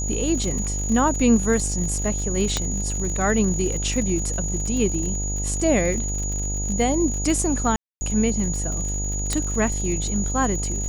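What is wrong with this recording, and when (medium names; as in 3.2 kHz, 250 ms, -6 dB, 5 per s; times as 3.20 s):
buzz 50 Hz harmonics 18 -27 dBFS
crackle 61 per s -28 dBFS
whine 6.8 kHz -28 dBFS
2.57 s: pop -8 dBFS
7.76–8.01 s: dropout 250 ms
9.33 s: pop -8 dBFS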